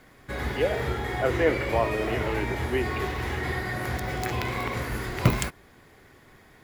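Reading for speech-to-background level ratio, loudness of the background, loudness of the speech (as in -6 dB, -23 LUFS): 0.5 dB, -29.5 LUFS, -29.0 LUFS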